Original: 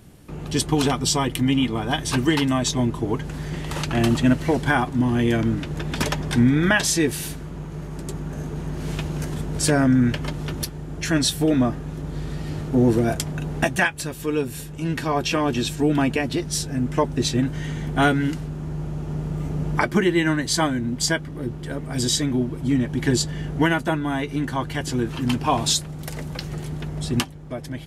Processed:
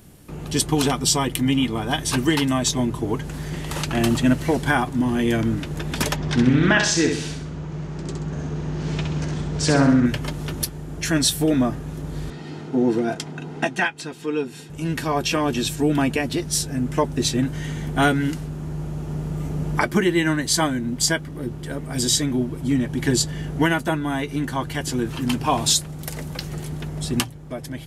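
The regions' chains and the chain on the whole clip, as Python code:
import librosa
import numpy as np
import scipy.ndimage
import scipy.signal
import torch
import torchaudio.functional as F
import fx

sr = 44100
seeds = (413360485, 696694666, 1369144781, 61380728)

y = fx.chain(x, sr, fx.lowpass(hz=6500.0, slope=24),
    fx.echo_feedback(ms=65, feedback_pct=41, wet_db=-5),
    fx.doppler_dist(depth_ms=0.26), at=(6.16, 10.06))
y = fx.chain(y, sr, fx.bandpass_edges(low_hz=200.0, high_hz=5000.0),
    fx.notch_comb(f0_hz=570.0), at=(12.3, 14.7))
y = fx.high_shelf(y, sr, hz=7600.0, db=7.5)
y = fx.hum_notches(y, sr, base_hz=60, count=2)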